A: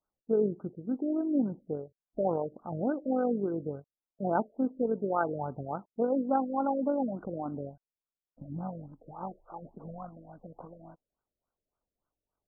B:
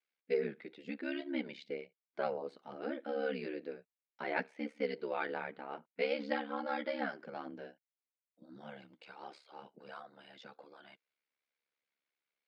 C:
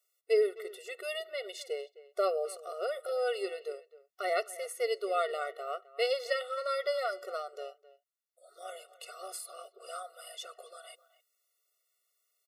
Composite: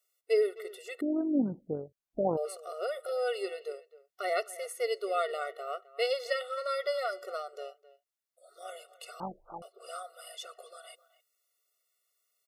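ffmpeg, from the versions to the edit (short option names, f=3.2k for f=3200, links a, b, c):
-filter_complex "[0:a]asplit=2[a][b];[2:a]asplit=3[c][d][e];[c]atrim=end=1.012[f];[a]atrim=start=1.008:end=2.372[g];[d]atrim=start=2.368:end=9.202[h];[b]atrim=start=9.198:end=9.622[i];[e]atrim=start=9.618[j];[f][g]acrossfade=d=0.004:c1=hsin:c2=hsin[k];[k][h]acrossfade=d=0.004:c1=hsin:c2=hsin[l];[l][i]acrossfade=d=0.004:c1=hsin:c2=hsin[m];[m][j]acrossfade=d=0.004:c1=hsin:c2=hsin"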